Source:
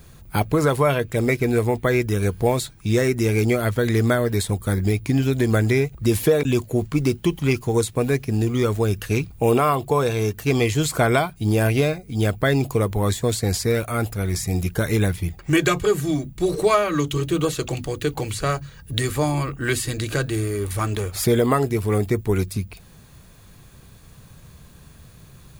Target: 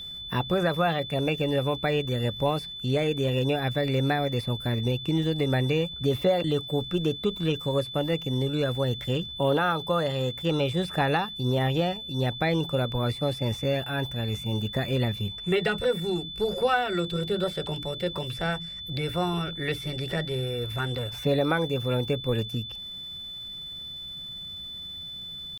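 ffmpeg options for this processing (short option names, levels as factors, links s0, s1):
-filter_complex "[0:a]asetrate=52444,aresample=44100,atempo=0.840896,acrossover=split=3300[s0][s1];[s1]acompressor=threshold=0.00708:ratio=4:attack=1:release=60[s2];[s0][s2]amix=inputs=2:normalize=0,aeval=exprs='val(0)+0.0316*sin(2*PI*3500*n/s)':c=same,volume=0.501"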